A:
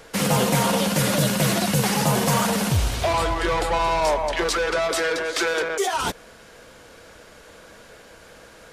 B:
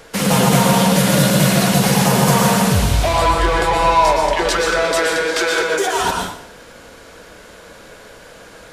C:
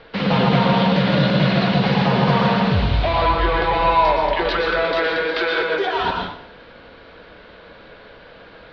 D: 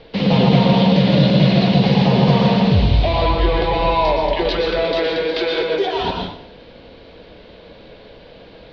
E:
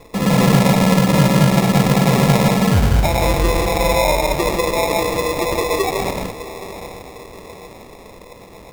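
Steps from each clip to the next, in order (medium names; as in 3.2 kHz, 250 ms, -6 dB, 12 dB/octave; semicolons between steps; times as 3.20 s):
plate-style reverb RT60 0.65 s, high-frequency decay 0.9×, pre-delay 105 ms, DRR 0.5 dB; trim +3.5 dB
steep low-pass 4.3 kHz 48 dB/octave; trim -2.5 dB
peaking EQ 1.4 kHz -14 dB 1.1 oct; trim +4.5 dB
echo that smears into a reverb 714 ms, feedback 50%, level -13 dB; sample-and-hold 29×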